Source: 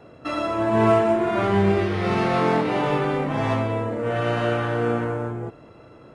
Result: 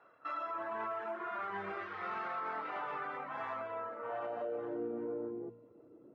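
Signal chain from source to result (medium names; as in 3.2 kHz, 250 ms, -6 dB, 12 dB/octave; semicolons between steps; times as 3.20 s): reverb removal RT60 0.57 s; band-pass sweep 1.3 kHz -> 320 Hz, 3.92–4.78 s; feedback comb 94 Hz, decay 1.6 s, harmonics all, mix 60%; peak limiter -33.5 dBFS, peak gain reduction 9.5 dB; de-hum 58.01 Hz, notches 5; trim +2.5 dB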